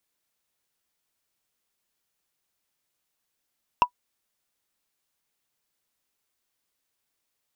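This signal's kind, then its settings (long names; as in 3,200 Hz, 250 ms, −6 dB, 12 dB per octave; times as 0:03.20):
struck wood, lowest mode 982 Hz, decay 0.08 s, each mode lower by 9.5 dB, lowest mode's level −8.5 dB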